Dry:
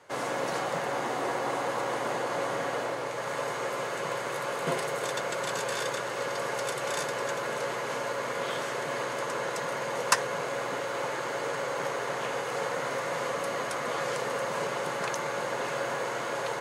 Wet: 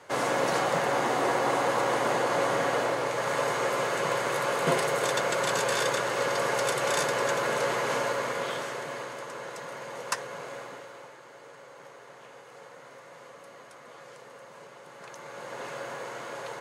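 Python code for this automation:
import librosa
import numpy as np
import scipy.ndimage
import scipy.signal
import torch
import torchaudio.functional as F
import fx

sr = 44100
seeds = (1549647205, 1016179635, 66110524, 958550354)

y = fx.gain(x, sr, db=fx.line((7.98, 4.5), (9.25, -7.0), (10.54, -7.0), (11.18, -17.0), (14.85, -17.0), (15.62, -6.0)))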